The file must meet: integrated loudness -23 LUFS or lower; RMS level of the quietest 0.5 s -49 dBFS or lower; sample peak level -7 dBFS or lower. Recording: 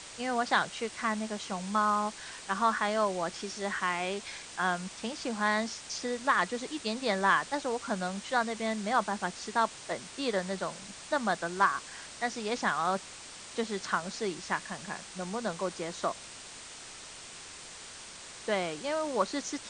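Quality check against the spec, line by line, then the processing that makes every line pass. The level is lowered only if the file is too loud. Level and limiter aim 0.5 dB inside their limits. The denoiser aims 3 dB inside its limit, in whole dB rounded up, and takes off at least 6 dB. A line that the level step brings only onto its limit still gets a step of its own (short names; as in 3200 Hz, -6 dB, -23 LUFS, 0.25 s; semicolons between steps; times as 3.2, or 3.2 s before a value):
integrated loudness -32.0 LUFS: OK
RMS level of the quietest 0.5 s -47 dBFS: fail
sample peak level -11.5 dBFS: OK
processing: denoiser 6 dB, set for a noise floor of -47 dBFS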